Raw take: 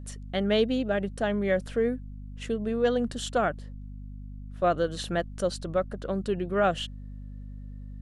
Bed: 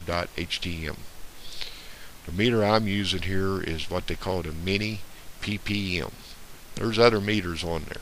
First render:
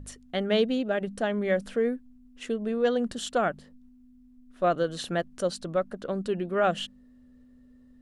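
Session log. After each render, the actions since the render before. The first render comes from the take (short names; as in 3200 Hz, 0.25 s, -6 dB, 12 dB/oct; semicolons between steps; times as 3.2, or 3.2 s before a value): de-hum 50 Hz, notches 4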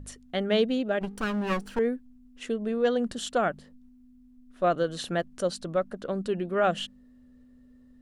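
1.01–1.79 minimum comb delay 0.69 ms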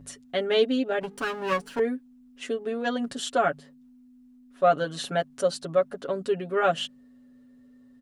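HPF 190 Hz 6 dB/oct; comb 7.2 ms, depth 90%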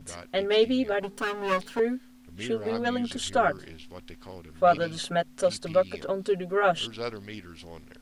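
add bed -15.5 dB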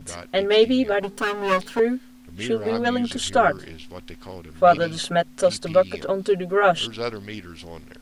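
gain +5.5 dB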